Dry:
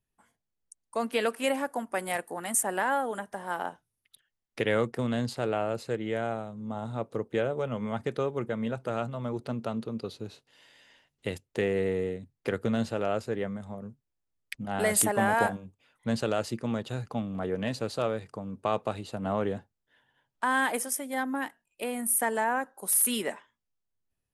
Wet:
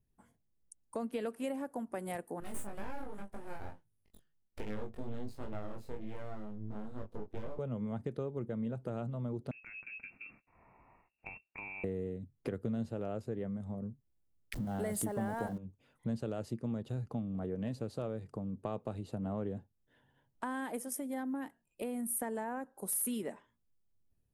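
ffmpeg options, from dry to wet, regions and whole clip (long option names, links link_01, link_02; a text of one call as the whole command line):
ffmpeg -i in.wav -filter_complex "[0:a]asettb=1/sr,asplit=3[link_01][link_02][link_03];[link_01]atrim=end=2.404[link_04];[link_02]atrim=start=2.4:end=7.59,asetpts=PTS-STARTPTS,afade=type=in:duration=0.004:curve=qsin,afade=type=out:start_time=5.186:duration=0.004:curve=qsin,flanger=delay=19.5:depth=6.6:speed=1.3,aeval=exprs='max(val(0),0)':channel_layout=same,asplit=2[link_05][link_06];[link_06]adelay=19,volume=-3.5dB[link_07];[link_05][link_07]amix=inputs=2:normalize=0,atrim=end_sample=228879[link_08];[link_03]atrim=start=7.586[link_09];[link_04][link_08]acrossfade=duration=0.004:curve1=hsin:curve2=qsin[link_10];[link_10][link_09]acrossfade=duration=0.004:curve1=qsin:curve2=hsin,asettb=1/sr,asplit=3[link_11][link_12][link_13];[link_11]atrim=end=9.514[link_14];[link_12]atrim=start=9.51:end=11.84,asetpts=PTS-STARTPTS,afade=type=in:duration=0.004:curve=qsin,afade=type=out:start_time=2.326:duration=0.004:curve=qsin,lowpass=frequency=2400:width_type=q:width=0.5098,lowpass=frequency=2400:width_type=q:width=0.6013,lowpass=frequency=2400:width_type=q:width=0.9,lowpass=frequency=2400:width_type=q:width=2.563,afreqshift=-2800,acompressor=threshold=-37dB:ratio=4:attack=3.2:release=140:knee=1:detection=peak[link_15];[link_13]atrim=start=11.836[link_16];[link_14][link_15]acrossfade=duration=0.004:curve1=hsin:curve2=qsin[link_17];[link_17][link_16]acrossfade=duration=0.004:curve1=qsin:curve2=hsin,asettb=1/sr,asplit=3[link_18][link_19][link_20];[link_18]atrim=end=14.534[link_21];[link_19]atrim=start=14.53:end=15.58,asetpts=PTS-STARTPTS,afade=type=in:duration=0.004:curve=qsin,afade=type=out:start_time=1.046:duration=0.004:curve=qsin,aeval=exprs='val(0)+0.5*0.015*sgn(val(0))':channel_layout=same,bandreject=frequency=2500:width=9.7[link_22];[link_20]atrim=start=15.576[link_23];[link_21][link_22]acrossfade=duration=0.004:curve1=hsin:curve2=qsin[link_24];[link_24][link_23]acrossfade=duration=0.004:curve1=qsin:curve2=hsin,tiltshelf=frequency=630:gain=8.5,acompressor=threshold=-40dB:ratio=2.5,highshelf=frequency=8500:gain=8" out.wav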